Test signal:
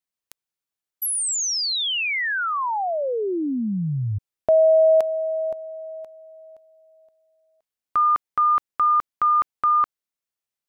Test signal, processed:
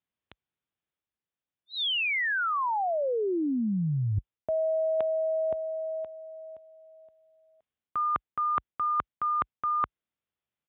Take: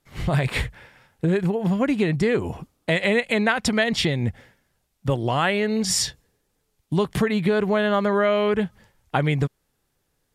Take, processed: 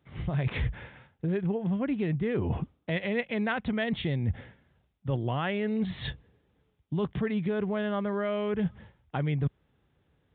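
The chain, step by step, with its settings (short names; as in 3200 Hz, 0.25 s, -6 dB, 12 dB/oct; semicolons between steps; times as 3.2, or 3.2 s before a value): HPF 50 Hz 24 dB/oct; low shelf 310 Hz +8.5 dB; reverse; compressor 10:1, threshold -26 dBFS; reverse; downsampling 8000 Hz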